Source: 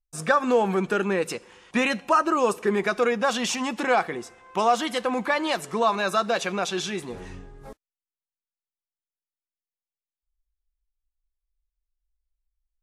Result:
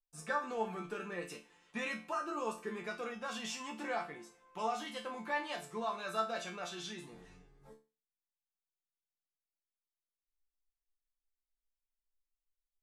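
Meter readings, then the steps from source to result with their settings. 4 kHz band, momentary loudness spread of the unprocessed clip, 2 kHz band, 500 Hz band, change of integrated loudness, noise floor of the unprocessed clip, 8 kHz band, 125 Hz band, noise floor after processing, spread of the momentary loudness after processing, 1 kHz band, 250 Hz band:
-14.0 dB, 11 LU, -14.0 dB, -17.0 dB, -15.5 dB, under -85 dBFS, -14.5 dB, -17.0 dB, under -85 dBFS, 10 LU, -14.5 dB, -17.0 dB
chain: chord resonator D3 minor, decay 0.31 s

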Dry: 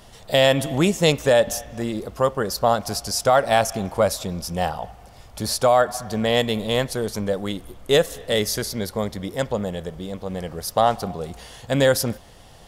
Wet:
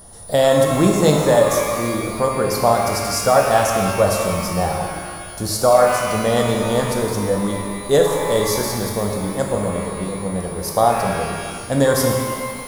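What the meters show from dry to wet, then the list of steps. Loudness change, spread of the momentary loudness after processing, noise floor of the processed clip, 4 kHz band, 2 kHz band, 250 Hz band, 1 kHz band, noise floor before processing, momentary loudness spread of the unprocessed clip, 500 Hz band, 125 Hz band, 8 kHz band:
+3.5 dB, 10 LU, -32 dBFS, -1.5 dB, +2.0 dB, +5.0 dB, +4.5 dB, -46 dBFS, 13 LU, +4.0 dB, +4.5 dB, +5.0 dB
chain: whistle 9.7 kHz -43 dBFS; peaking EQ 2.7 kHz -14.5 dB 0.87 oct; pitch-shifted reverb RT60 1.8 s, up +12 st, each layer -8 dB, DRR 1 dB; trim +2 dB

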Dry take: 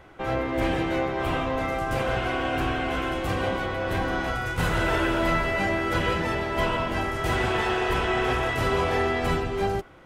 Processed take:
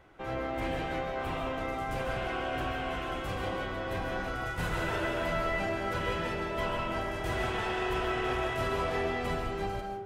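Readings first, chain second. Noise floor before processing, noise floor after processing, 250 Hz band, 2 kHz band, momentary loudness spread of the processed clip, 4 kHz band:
-30 dBFS, -37 dBFS, -8.5 dB, -7.5 dB, 4 LU, -7.0 dB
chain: algorithmic reverb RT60 0.65 s, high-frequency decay 0.6×, pre-delay 105 ms, DRR 3.5 dB; trim -8.5 dB

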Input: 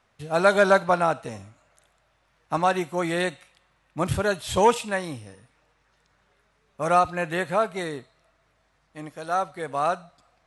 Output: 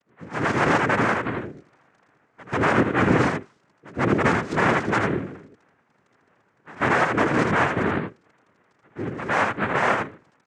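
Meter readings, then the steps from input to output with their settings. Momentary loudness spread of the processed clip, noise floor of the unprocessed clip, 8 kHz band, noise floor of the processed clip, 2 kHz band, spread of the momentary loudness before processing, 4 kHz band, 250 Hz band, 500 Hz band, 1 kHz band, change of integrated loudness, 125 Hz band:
13 LU, -67 dBFS, -4.0 dB, -66 dBFS, +6.0 dB, 19 LU, 0.0 dB, +7.0 dB, -1.0 dB, +1.0 dB, +2.0 dB, +6.5 dB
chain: local Wiener filter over 25 samples; treble shelf 6.1 kHz +10 dB; peak limiter -17.5 dBFS, peak gain reduction 12 dB; level rider gain up to 11 dB; reverse echo 140 ms -21 dB; touch-sensitive phaser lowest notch 260 Hz, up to 2.8 kHz, full sweep at -19.5 dBFS; crackle 11 per s -30 dBFS; saturation -11 dBFS, distortion -18 dB; delay 81 ms -4.5 dB; noise-vocoded speech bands 3; distance through air 70 m; trim -1.5 dB

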